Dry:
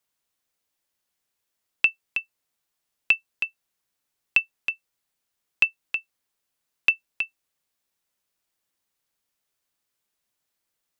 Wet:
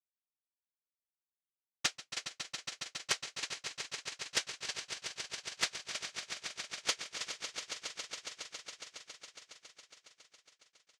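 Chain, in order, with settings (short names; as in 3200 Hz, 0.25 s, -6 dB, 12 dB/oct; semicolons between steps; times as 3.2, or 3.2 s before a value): LPF 1100 Hz 12 dB/oct; expander -53 dBFS; comb 6.7 ms, depth 56%; noise vocoder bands 3; formant shift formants -3 st; on a send: swelling echo 0.138 s, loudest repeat 5, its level -10 dB; on the sum: Doppler distortion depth 0.39 ms; gain +1 dB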